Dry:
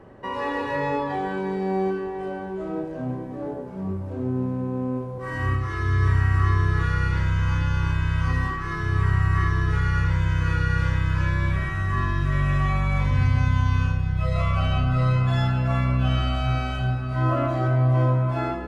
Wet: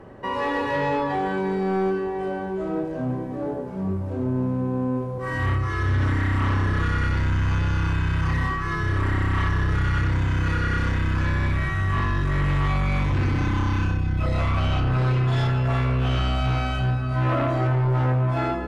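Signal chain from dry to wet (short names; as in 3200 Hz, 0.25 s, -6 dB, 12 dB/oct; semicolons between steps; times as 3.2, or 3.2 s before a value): sine folder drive 8 dB, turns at -9.5 dBFS; gain -8.5 dB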